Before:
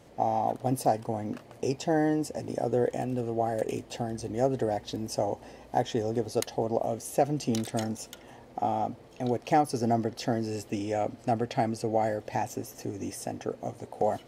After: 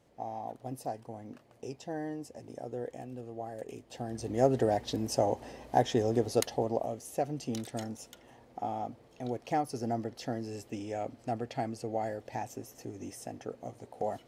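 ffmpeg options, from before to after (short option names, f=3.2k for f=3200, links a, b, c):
-af "volume=1dB,afade=t=in:st=3.85:d=0.61:silence=0.223872,afade=t=out:st=6.34:d=0.63:silence=0.398107"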